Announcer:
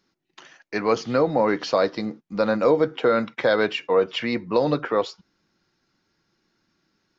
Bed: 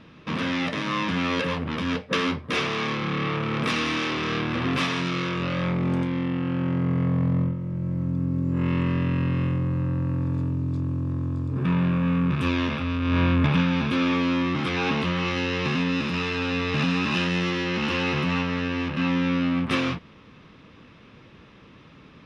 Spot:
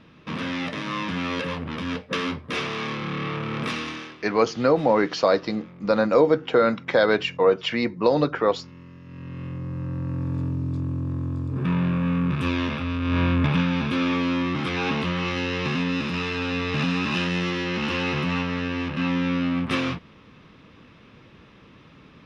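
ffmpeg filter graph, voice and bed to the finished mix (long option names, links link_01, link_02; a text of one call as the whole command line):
ffmpeg -i stem1.wav -i stem2.wav -filter_complex "[0:a]adelay=3500,volume=1dB[link_01];[1:a]volume=18dB,afade=type=out:start_time=3.65:duration=0.53:silence=0.11885,afade=type=in:start_time=9.04:duration=1.4:silence=0.0944061[link_02];[link_01][link_02]amix=inputs=2:normalize=0" out.wav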